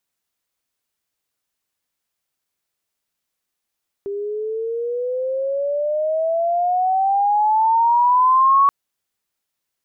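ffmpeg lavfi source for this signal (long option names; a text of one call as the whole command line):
ffmpeg -f lavfi -i "aevalsrc='pow(10,(-10+13*(t/4.63-1))/20)*sin(2*PI*397*4.63/(18*log(2)/12)*(exp(18*log(2)/12*t/4.63)-1))':duration=4.63:sample_rate=44100" out.wav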